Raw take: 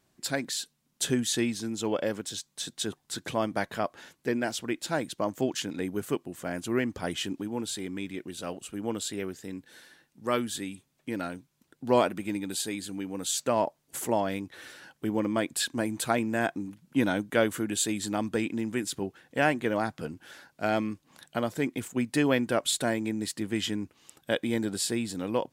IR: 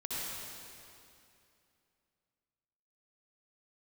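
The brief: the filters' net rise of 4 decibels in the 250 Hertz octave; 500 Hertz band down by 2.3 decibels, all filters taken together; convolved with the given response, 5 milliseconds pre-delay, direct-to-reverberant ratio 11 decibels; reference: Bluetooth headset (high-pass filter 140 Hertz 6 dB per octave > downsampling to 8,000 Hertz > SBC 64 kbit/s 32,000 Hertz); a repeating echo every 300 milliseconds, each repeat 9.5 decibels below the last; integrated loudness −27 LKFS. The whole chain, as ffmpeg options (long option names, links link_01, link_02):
-filter_complex "[0:a]equalizer=frequency=250:width_type=o:gain=7.5,equalizer=frequency=500:width_type=o:gain=-5,aecho=1:1:300|600|900|1200:0.335|0.111|0.0365|0.012,asplit=2[link_01][link_02];[1:a]atrim=start_sample=2205,adelay=5[link_03];[link_02][link_03]afir=irnorm=-1:irlink=0,volume=-15dB[link_04];[link_01][link_04]amix=inputs=2:normalize=0,highpass=frequency=140:poles=1,aresample=8000,aresample=44100,volume=2dB" -ar 32000 -c:a sbc -b:a 64k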